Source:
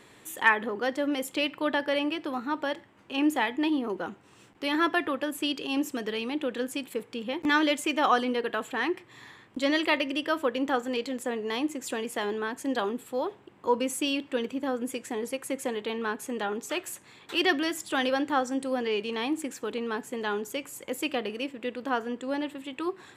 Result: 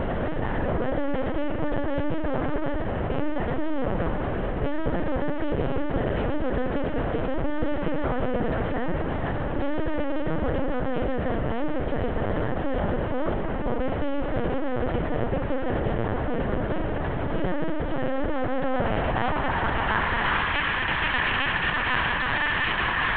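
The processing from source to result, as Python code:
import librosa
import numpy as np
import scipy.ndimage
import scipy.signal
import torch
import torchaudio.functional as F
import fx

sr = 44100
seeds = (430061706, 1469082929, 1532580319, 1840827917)

y = fx.bin_compress(x, sr, power=0.2)
y = 10.0 ** (-15.0 / 20.0) * np.tanh(y / 10.0 ** (-15.0 / 20.0))
y = fx.echo_thinned(y, sr, ms=118, feedback_pct=24, hz=870.0, wet_db=-13.5)
y = fx.filter_sweep_bandpass(y, sr, from_hz=350.0, to_hz=1800.0, start_s=18.15, end_s=20.57, q=0.96)
y = fx.lpc_vocoder(y, sr, seeds[0], excitation='pitch_kept', order=8)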